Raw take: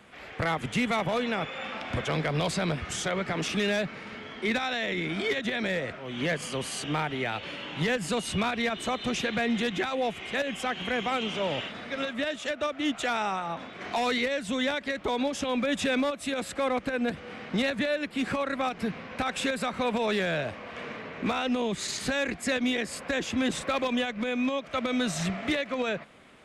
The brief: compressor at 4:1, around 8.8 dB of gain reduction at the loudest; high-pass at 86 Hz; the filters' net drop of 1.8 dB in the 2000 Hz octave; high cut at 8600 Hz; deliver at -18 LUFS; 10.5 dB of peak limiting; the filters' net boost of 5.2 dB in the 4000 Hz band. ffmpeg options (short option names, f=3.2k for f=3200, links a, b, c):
-af "highpass=86,lowpass=8.6k,equalizer=f=2k:t=o:g=-4.5,equalizer=f=4k:t=o:g=8,acompressor=threshold=-34dB:ratio=4,volume=21.5dB,alimiter=limit=-10dB:level=0:latency=1"